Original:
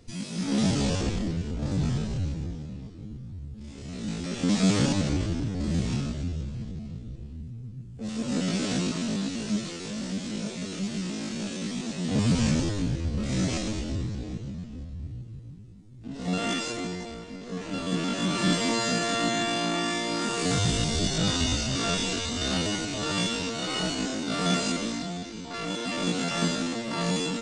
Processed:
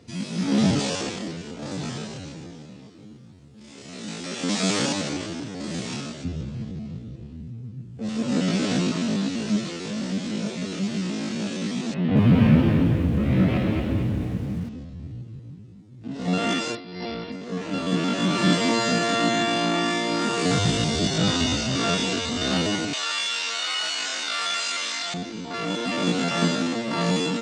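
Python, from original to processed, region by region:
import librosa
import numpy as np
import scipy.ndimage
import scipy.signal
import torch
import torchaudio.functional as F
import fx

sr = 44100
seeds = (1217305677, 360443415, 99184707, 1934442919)

y = fx.chain(x, sr, fx.highpass(hz=460.0, slope=6),
    fx.high_shelf(hz=7000.0, db=10.0), at=(0.79, 6.25))
y = fx.chain(y, sr, fx.lowpass(hz=2900.0, slope=24),
    fx.low_shelf(hz=110.0, db=9.5),
    fx.echo_crushed(ms=225, feedback_pct=35, bits=8, wet_db=-5.0), at=(11.94, 14.69))
y = fx.chain(y, sr, fx.over_compress(threshold_db=-37.0, ratio=-0.5),
    fx.high_shelf(hz=8600.0, db=12.0),
    fx.resample_bad(factor=4, down='none', up='filtered'), at=(16.75, 17.32))
y = fx.chain(y, sr, fx.highpass(hz=1400.0, slope=12),
    fx.env_flatten(amount_pct=70), at=(22.93, 25.14))
y = scipy.signal.sosfilt(scipy.signal.butter(2, 110.0, 'highpass', fs=sr, output='sos'), y)
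y = fx.high_shelf(y, sr, hz=7900.0, db=-12.0)
y = y * 10.0 ** (5.0 / 20.0)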